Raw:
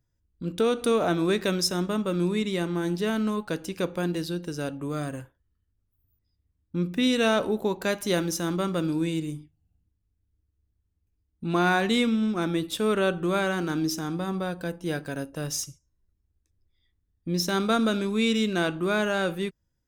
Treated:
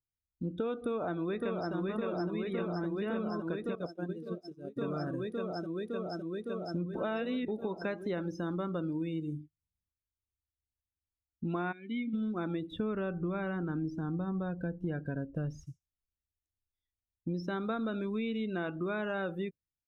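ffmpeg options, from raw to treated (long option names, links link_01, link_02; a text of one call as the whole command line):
ffmpeg -i in.wav -filter_complex "[0:a]asplit=2[link_01][link_02];[link_02]afade=type=in:start_time=0.76:duration=0.01,afade=type=out:start_time=1.74:duration=0.01,aecho=0:1:560|1120|1680|2240|2800|3360|3920|4480|5040|5600|6160|6720:0.794328|0.675179|0.573902|0.487817|0.414644|0.352448|0.299581|0.254643|0.216447|0.18398|0.156383|0.132925[link_03];[link_01][link_03]amix=inputs=2:normalize=0,asettb=1/sr,asplit=3[link_04][link_05][link_06];[link_04]atrim=end=3.754[link_07];[link_05]atrim=start=3.75:end=4.77,asetpts=PTS-STARTPTS,afade=type=in:duration=0.004:curve=qsin,afade=type=out:start_time=1.016:duration=0.004:curve=qsin,agate=range=-33dB:threshold=-19dB:ratio=3:release=100:detection=peak[link_08];[link_06]atrim=start=4.766[link_09];[link_07][link_08]acrossfade=duration=0.004:curve1=hsin:curve2=qsin[link_10];[link_10][link_09]acrossfade=duration=0.004:curve1=qsin:curve2=hsin,asplit=3[link_11][link_12][link_13];[link_11]afade=type=out:start_time=11.71:duration=0.02[link_14];[link_12]asplit=3[link_15][link_16][link_17];[link_15]bandpass=frequency=270:width_type=q:width=8,volume=0dB[link_18];[link_16]bandpass=frequency=2290:width_type=q:width=8,volume=-6dB[link_19];[link_17]bandpass=frequency=3010:width_type=q:width=8,volume=-9dB[link_20];[link_18][link_19][link_20]amix=inputs=3:normalize=0,afade=type=in:start_time=11.71:duration=0.02,afade=type=out:start_time=12.13:duration=0.02[link_21];[link_13]afade=type=in:start_time=12.13:duration=0.02[link_22];[link_14][link_21][link_22]amix=inputs=3:normalize=0,asettb=1/sr,asplit=3[link_23][link_24][link_25];[link_23]atrim=end=12.714[link_26];[link_24]atrim=start=12.71:end=15.67,asetpts=PTS-STARTPTS,afade=type=in:duration=0.004:curve=qsin,afade=type=out:start_time=2.956:duration=0.004:curve=qsin,bass=frequency=250:gain=8,treble=frequency=4000:gain=-9[link_27];[link_25]atrim=start=15.666[link_28];[link_26][link_27]acrossfade=duration=0.004:curve1=hsin:curve2=qsin[link_29];[link_29][link_28]acrossfade=duration=0.004:curve1=qsin:curve2=hsin,asplit=3[link_30][link_31][link_32];[link_30]atrim=end=6.952[link_33];[link_31]atrim=start=6.948:end=7.482,asetpts=PTS-STARTPTS,areverse[link_34];[link_32]atrim=start=7.478[link_35];[link_33][link_34]acrossfade=duration=0.004:curve1=hsin:curve2=hsin[link_36];[link_36][link_35]acrossfade=duration=0.004:curve1=hsin:curve2=hsin,acrossover=split=2600[link_37][link_38];[link_38]acompressor=threshold=-43dB:ratio=4:attack=1:release=60[link_39];[link_37][link_39]amix=inputs=2:normalize=0,afftdn=noise_reduction=23:noise_floor=-37,acompressor=threshold=-32dB:ratio=6" out.wav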